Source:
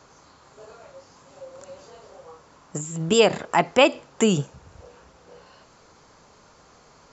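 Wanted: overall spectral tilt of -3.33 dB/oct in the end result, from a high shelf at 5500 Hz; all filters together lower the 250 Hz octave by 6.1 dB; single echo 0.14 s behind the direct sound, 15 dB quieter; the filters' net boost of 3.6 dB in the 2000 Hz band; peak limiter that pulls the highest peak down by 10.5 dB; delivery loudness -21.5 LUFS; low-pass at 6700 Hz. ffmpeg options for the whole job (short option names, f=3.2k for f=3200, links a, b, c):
-af "lowpass=6.7k,equalizer=f=250:t=o:g=-8.5,equalizer=f=2k:t=o:g=3.5,highshelf=f=5.5k:g=7.5,alimiter=limit=-13dB:level=0:latency=1,aecho=1:1:140:0.178,volume=5.5dB"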